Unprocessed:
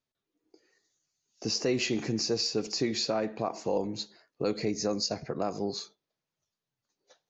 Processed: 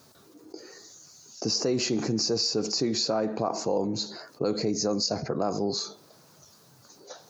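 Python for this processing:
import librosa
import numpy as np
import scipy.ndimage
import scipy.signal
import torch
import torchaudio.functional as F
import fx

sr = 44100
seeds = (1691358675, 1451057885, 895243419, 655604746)

y = scipy.signal.sosfilt(scipy.signal.butter(2, 80.0, 'highpass', fs=sr, output='sos'), x)
y = fx.band_shelf(y, sr, hz=2500.0, db=-9.0, octaves=1.2)
y = fx.env_flatten(y, sr, amount_pct=50)
y = y * 10.0 ** (1.0 / 20.0)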